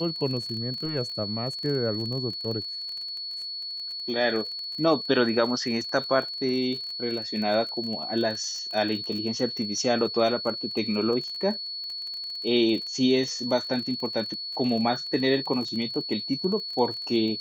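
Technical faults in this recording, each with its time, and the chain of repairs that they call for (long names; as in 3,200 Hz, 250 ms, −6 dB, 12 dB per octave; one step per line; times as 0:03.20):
surface crackle 27 per second −33 dBFS
whistle 4,400 Hz −32 dBFS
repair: click removal
notch filter 4,400 Hz, Q 30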